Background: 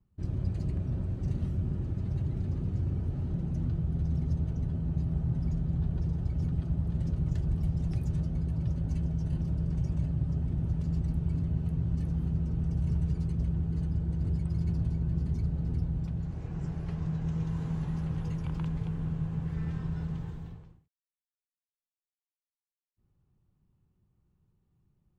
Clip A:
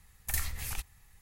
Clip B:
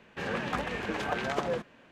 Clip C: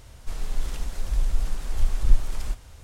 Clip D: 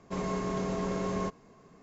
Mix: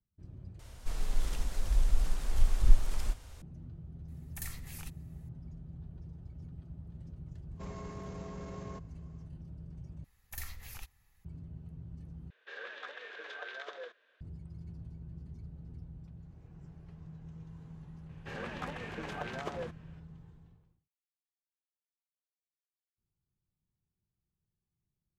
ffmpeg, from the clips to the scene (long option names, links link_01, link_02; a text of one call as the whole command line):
ffmpeg -i bed.wav -i cue0.wav -i cue1.wav -i cue2.wav -i cue3.wav -filter_complex "[1:a]asplit=2[link_01][link_02];[2:a]asplit=2[link_03][link_04];[0:a]volume=-16.5dB[link_05];[4:a]alimiter=level_in=5dB:limit=-24dB:level=0:latency=1:release=14,volume=-5dB[link_06];[link_02]equalizer=frequency=8600:width=3:gain=-9[link_07];[link_03]highpass=frequency=450:width=0.5412,highpass=frequency=450:width=1.3066,equalizer=frequency=450:width_type=q:width=4:gain=5,equalizer=frequency=840:width_type=q:width=4:gain=-8,equalizer=frequency=1600:width_type=q:width=4:gain=9,equalizer=frequency=3600:width_type=q:width=4:gain=10,lowpass=frequency=6300:width=0.5412,lowpass=frequency=6300:width=1.3066[link_08];[link_05]asplit=4[link_09][link_10][link_11][link_12];[link_09]atrim=end=0.594[link_13];[3:a]atrim=end=2.83,asetpts=PTS-STARTPTS,volume=-3.5dB[link_14];[link_10]atrim=start=3.416:end=10.044[link_15];[link_07]atrim=end=1.21,asetpts=PTS-STARTPTS,volume=-9dB[link_16];[link_11]atrim=start=11.246:end=12.304[link_17];[link_08]atrim=end=1.91,asetpts=PTS-STARTPTS,volume=-14.5dB[link_18];[link_12]atrim=start=14.206[link_19];[link_01]atrim=end=1.21,asetpts=PTS-STARTPTS,volume=-9.5dB,afade=type=in:duration=0.004:curve=hsin,afade=type=out:start_time=1.206:duration=0.004:curve=hsin,adelay=4080[link_20];[link_06]atrim=end=1.82,asetpts=PTS-STARTPTS,volume=-9dB,afade=type=in:duration=0.1,afade=type=out:start_time=1.72:duration=0.1,adelay=7490[link_21];[link_04]atrim=end=1.91,asetpts=PTS-STARTPTS,volume=-8.5dB,afade=type=in:duration=0.004:curve=hsin,afade=type=out:start_time=1.906:duration=0.004:curve=hsin,adelay=18090[link_22];[link_13][link_14]acrossfade=duration=0.004:curve1=hsin:curve2=hsin[link_23];[link_23][link_15]acrossfade=duration=0.004:curve1=hsin:curve2=hsin[link_24];[link_24][link_16]acrossfade=duration=0.004:curve1=hsin:curve2=hsin[link_25];[link_25][link_17]acrossfade=duration=0.004:curve1=hsin:curve2=hsin[link_26];[link_26][link_18]acrossfade=duration=0.004:curve1=hsin:curve2=hsin[link_27];[link_27][link_19]acrossfade=duration=0.004:curve1=hsin:curve2=hsin[link_28];[link_28][link_20][link_21][link_22]amix=inputs=4:normalize=0" out.wav